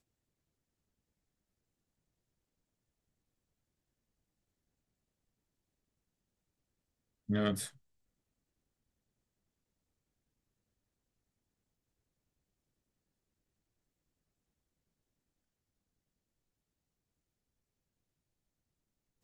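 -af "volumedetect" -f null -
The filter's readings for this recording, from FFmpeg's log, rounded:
mean_volume: -49.3 dB
max_volume: -20.2 dB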